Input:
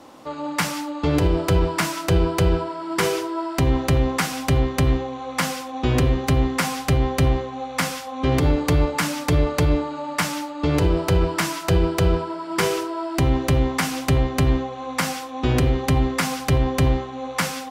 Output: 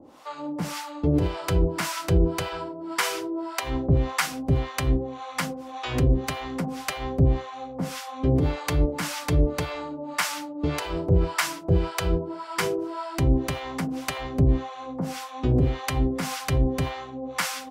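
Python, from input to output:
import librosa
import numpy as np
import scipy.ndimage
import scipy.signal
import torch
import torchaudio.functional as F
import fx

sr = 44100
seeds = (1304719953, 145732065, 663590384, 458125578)

y = fx.harmonic_tremolo(x, sr, hz=1.8, depth_pct=100, crossover_hz=640.0)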